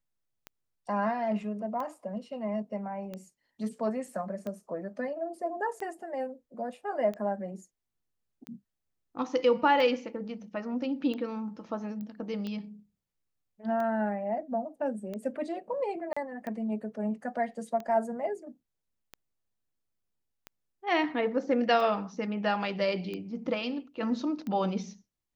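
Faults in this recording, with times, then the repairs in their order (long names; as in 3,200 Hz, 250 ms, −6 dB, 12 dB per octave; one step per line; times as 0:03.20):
scratch tick 45 rpm −25 dBFS
0:12.01: click −29 dBFS
0:16.13–0:16.16: drop-out 35 ms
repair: click removal
repair the gap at 0:16.13, 35 ms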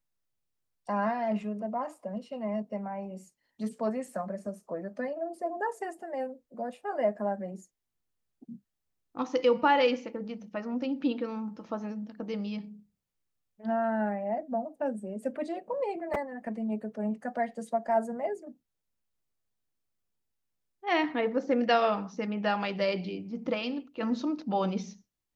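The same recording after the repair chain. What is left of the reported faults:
none of them is left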